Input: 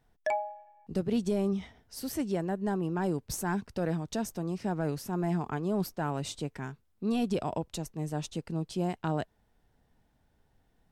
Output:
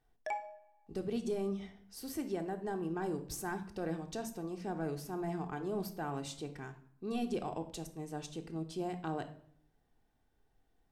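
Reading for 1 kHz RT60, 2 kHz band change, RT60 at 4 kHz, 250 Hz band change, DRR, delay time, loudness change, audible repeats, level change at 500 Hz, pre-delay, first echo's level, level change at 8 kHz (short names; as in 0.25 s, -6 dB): 0.60 s, -5.5 dB, 0.50 s, -7.5 dB, 5.0 dB, none, -6.5 dB, none, -5.0 dB, 3 ms, none, -6.0 dB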